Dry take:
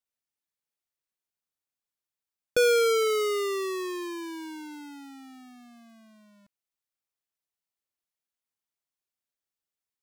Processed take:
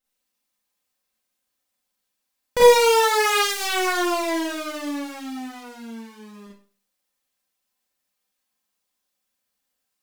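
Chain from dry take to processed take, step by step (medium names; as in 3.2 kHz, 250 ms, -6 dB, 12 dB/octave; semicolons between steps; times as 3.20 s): comb filter that takes the minimum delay 3.8 ms; in parallel at -1.5 dB: compressor with a negative ratio -33 dBFS, ratio -1; on the sum: Schroeder reverb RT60 0.42 s, combs from 31 ms, DRR -6.5 dB; trim -1 dB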